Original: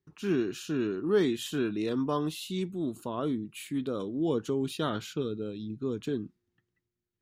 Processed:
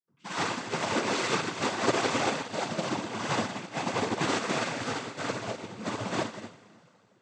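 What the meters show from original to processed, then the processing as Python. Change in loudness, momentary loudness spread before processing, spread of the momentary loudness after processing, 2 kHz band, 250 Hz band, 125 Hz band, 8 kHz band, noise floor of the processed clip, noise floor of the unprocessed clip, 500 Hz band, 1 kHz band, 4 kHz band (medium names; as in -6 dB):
+1.0 dB, 8 LU, 9 LU, +11.5 dB, -4.0 dB, -1.0 dB, +9.5 dB, -64 dBFS, under -85 dBFS, -1.5 dB, +10.0 dB, +7.0 dB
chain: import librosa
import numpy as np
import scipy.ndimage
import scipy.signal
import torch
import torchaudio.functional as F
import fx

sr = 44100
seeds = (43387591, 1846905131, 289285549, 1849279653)

p1 = fx.env_lowpass_down(x, sr, base_hz=780.0, full_db=-27.0)
p2 = fx.high_shelf(p1, sr, hz=6300.0, db=-8.5)
p3 = fx.leveller(p2, sr, passes=1)
p4 = p3 + fx.room_early_taps(p3, sr, ms=(19, 59), db=(-16.5, -16.0), dry=0)
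p5 = (np.mod(10.0 ** (24.0 / 20.0) * p4 + 1.0, 2.0) - 1.0) / 10.0 ** (24.0 / 20.0)
p6 = fx.rev_plate(p5, sr, seeds[0], rt60_s=2.8, hf_ratio=0.95, predelay_ms=0, drr_db=-6.0)
p7 = fx.noise_vocoder(p6, sr, seeds[1], bands=16)
y = fx.upward_expand(p7, sr, threshold_db=-34.0, expansion=2.5)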